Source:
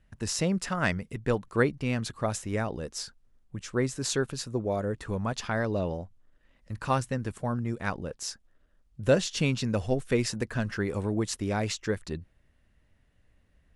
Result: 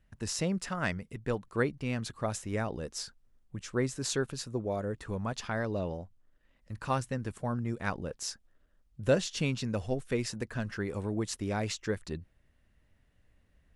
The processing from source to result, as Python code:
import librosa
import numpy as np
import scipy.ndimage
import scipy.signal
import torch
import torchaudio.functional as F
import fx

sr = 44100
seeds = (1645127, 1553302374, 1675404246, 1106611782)

y = fx.rider(x, sr, range_db=4, speed_s=2.0)
y = y * librosa.db_to_amplitude(-4.5)